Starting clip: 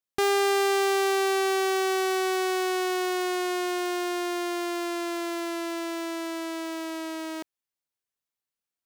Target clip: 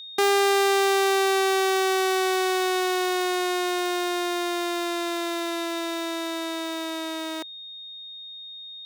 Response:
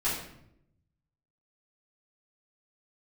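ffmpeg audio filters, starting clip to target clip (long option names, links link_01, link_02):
-af "aeval=exprs='val(0)+0.00891*sin(2*PI*3700*n/s)':channel_layout=same,highpass=300,volume=3.5dB"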